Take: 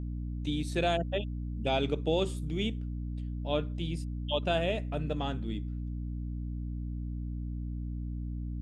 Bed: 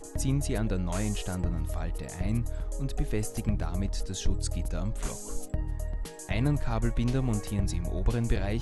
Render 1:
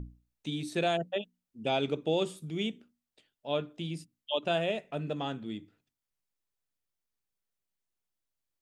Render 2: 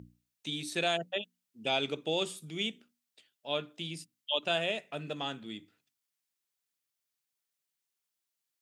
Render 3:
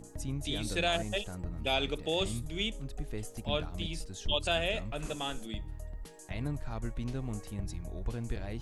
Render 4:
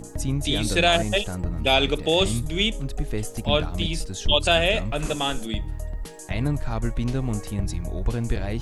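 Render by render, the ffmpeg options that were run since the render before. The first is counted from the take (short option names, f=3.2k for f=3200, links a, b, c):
-af "bandreject=f=60:t=h:w=6,bandreject=f=120:t=h:w=6,bandreject=f=180:t=h:w=6,bandreject=f=240:t=h:w=6,bandreject=f=300:t=h:w=6"
-af "highpass=110,tiltshelf=f=1.2k:g=-5.5"
-filter_complex "[1:a]volume=-9dB[a];[0:a][a]amix=inputs=2:normalize=0"
-af "volume=11dB"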